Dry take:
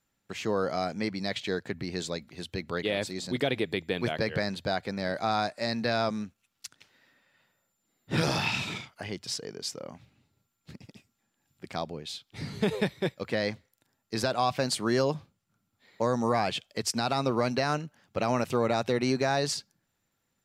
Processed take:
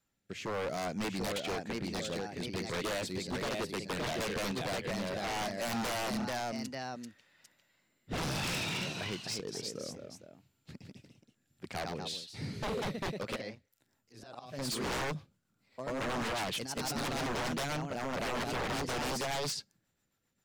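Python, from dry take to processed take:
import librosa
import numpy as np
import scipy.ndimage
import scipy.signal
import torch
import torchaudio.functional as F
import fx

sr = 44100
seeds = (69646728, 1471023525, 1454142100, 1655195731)

y = fx.auto_swell(x, sr, attack_ms=583.0, at=(13.34, 14.67), fade=0.02)
y = fx.rotary_switch(y, sr, hz=0.65, then_hz=7.5, switch_at_s=13.27)
y = fx.echo_pitch(y, sr, ms=762, semitones=1, count=2, db_per_echo=-6.0)
y = 10.0 ** (-29.5 / 20.0) * (np.abs((y / 10.0 ** (-29.5 / 20.0) + 3.0) % 4.0 - 2.0) - 1.0)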